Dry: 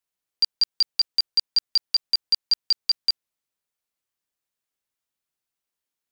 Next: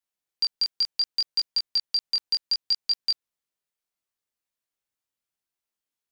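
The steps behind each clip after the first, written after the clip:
chorus effect 0.68 Hz, delay 19 ms, depth 5.3 ms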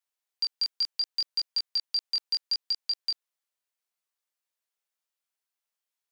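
high-pass filter 530 Hz 12 dB per octave
brickwall limiter −21 dBFS, peak gain reduction 8 dB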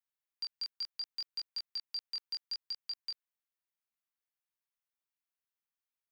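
octave-band graphic EQ 500/4,000/8,000 Hz −9/−4/−7 dB
level −5 dB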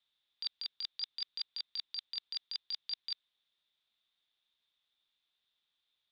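low-pass with resonance 3,600 Hz, resonance Q 13
compressor whose output falls as the input rises −38 dBFS, ratio −0.5
level +1.5 dB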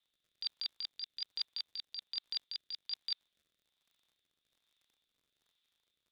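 surface crackle 64 per second −59 dBFS
rotating-speaker cabinet horn 1.2 Hz
level +2 dB

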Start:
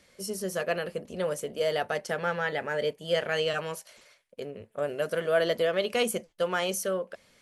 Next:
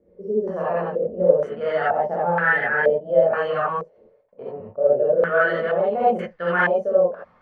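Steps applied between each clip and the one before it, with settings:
reverb whose tail is shaped and stops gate 100 ms rising, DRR −7.5 dB
low-pass on a step sequencer 2.1 Hz 450–1,700 Hz
level −3.5 dB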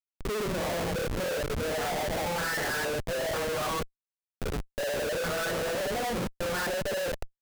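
comparator with hysteresis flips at −29.5 dBFS
level −9 dB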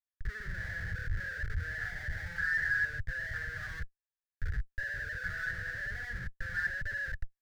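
drawn EQ curve 100 Hz 0 dB, 240 Hz −27 dB, 1,100 Hz −29 dB, 1,700 Hz +5 dB, 2,500 Hz −22 dB, 4,800 Hz −17 dB, 9,400 Hz −27 dB
level +2 dB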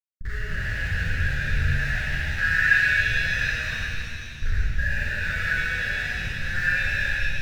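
downward expander −36 dBFS
reverb with rising layers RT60 2.5 s, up +7 semitones, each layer −8 dB, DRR −6.5 dB
level +4.5 dB

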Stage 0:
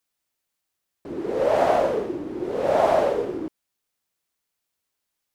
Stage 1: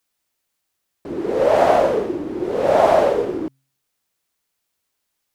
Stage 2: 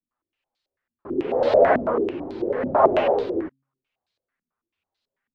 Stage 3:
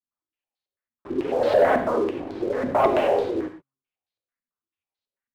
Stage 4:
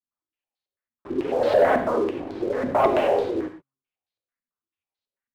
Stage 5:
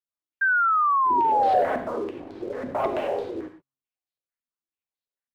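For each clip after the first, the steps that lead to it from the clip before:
hum removal 134.7 Hz, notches 2; level +5 dB
multi-voice chorus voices 4, 0.7 Hz, delay 10 ms, depth 2.6 ms; low-pass on a step sequencer 9.1 Hz 230–4,100 Hz; level −3 dB
leveller curve on the samples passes 2; reverb whose tail is shaped and stops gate 140 ms flat, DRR 7 dB; level −8.5 dB
no processing that can be heard
sound drawn into the spectrogram fall, 0:00.41–0:01.62, 710–1,600 Hz −14 dBFS; level −6.5 dB

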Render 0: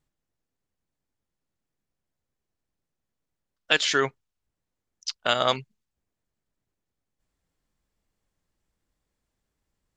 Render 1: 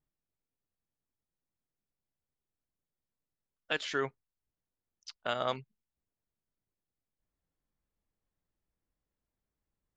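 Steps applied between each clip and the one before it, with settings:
high-shelf EQ 3,100 Hz −11.5 dB
level −8 dB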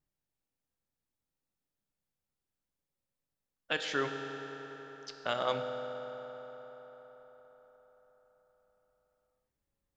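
convolution reverb RT60 5.1 s, pre-delay 3 ms, DRR 4 dB

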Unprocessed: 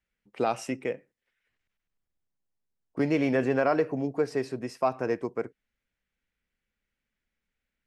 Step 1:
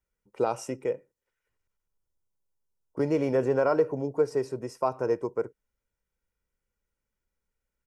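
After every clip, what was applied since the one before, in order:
flat-topped bell 2,700 Hz −9 dB
comb filter 2.1 ms, depth 43%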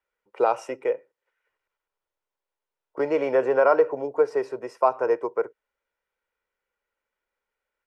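three-way crossover with the lows and the highs turned down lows −22 dB, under 410 Hz, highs −16 dB, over 3,400 Hz
level +8 dB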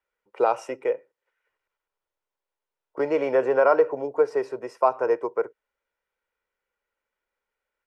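no processing that can be heard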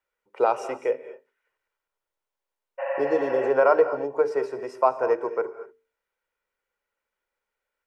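healed spectral selection 0:02.81–0:03.46, 520–3,100 Hz after
mains-hum notches 50/100/150/200/250/300/350/400/450 Hz
reverb whose tail is shaped and stops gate 260 ms rising, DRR 12 dB

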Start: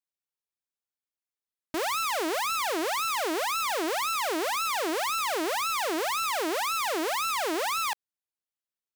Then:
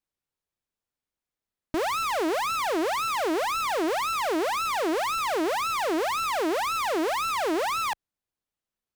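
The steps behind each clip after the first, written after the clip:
spectral tilt −2 dB per octave
in parallel at +2.5 dB: brickwall limiter −30 dBFS, peak gain reduction 10.5 dB
on the sum: level −1.5 dB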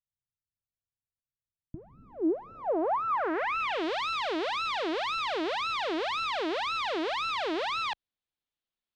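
low-pass filter sweep 120 Hz → 3,700 Hz, 0:01.61–0:03.86
level −5.5 dB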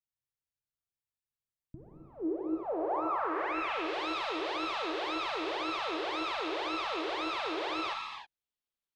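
reverb whose tail is shaped and stops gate 340 ms flat, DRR 0.5 dB
level −6.5 dB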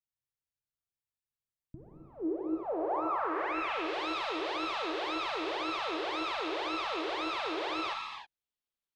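no processing that can be heard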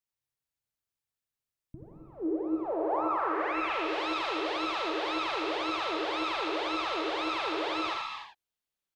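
single-tap delay 82 ms −5.5 dB
level +1.5 dB

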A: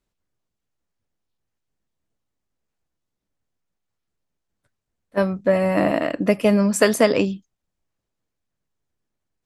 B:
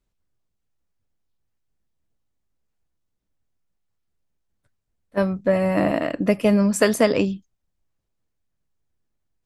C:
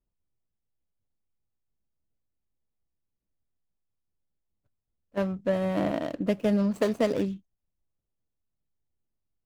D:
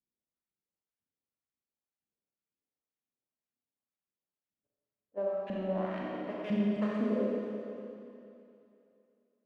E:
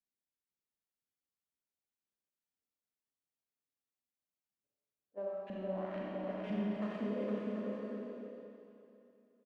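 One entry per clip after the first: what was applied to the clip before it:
low-shelf EQ 120 Hz +8 dB; level −2 dB
running median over 25 samples; level −6.5 dB
auto-filter band-pass saw up 2 Hz 200–2,900 Hz; four-comb reverb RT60 2.8 s, combs from 29 ms, DRR −5 dB; level −4.5 dB
bouncing-ball delay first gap 460 ms, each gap 0.6×, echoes 5; level −7 dB

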